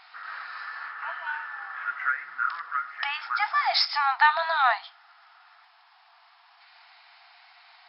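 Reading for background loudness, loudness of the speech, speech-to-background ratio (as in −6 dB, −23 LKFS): −32.5 LKFS, −24.0 LKFS, 8.5 dB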